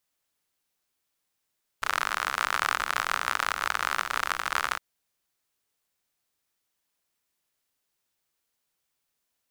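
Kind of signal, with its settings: rain from filtered ticks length 2.96 s, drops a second 62, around 1300 Hz, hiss -21 dB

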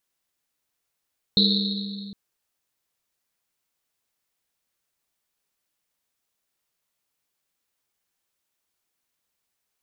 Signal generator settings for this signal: Risset drum length 0.76 s, pitch 200 Hz, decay 2.97 s, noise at 4000 Hz, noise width 660 Hz, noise 50%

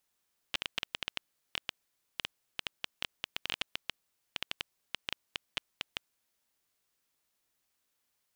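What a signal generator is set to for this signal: random clicks 7.8/s -14.5 dBFS 5.61 s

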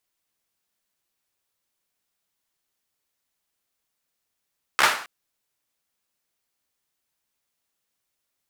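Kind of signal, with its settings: hand clap length 0.27 s, apart 14 ms, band 1300 Hz, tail 0.46 s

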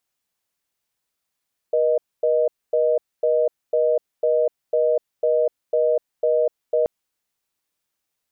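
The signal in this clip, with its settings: call progress tone reorder tone, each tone -18.5 dBFS 5.13 s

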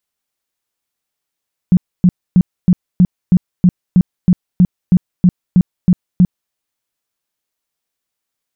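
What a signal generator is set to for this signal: tone bursts 180 Hz, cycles 9, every 0.32 s, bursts 15, -4.5 dBFS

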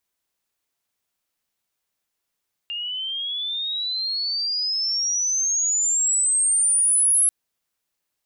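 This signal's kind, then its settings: chirp logarithmic 2800 Hz -> 11000 Hz -26.5 dBFS -> -14.5 dBFS 4.59 s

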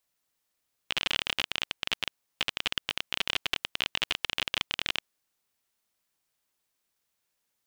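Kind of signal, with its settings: random clicks 29/s -10 dBFS 4.15 s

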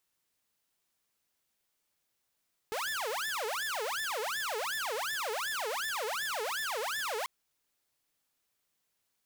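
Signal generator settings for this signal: siren wail 422–1770 Hz 2.7/s saw -30 dBFS 4.54 s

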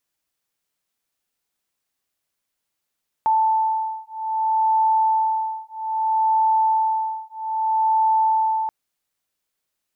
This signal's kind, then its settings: beating tones 881 Hz, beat 0.62 Hz, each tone -20.5 dBFS 5.43 s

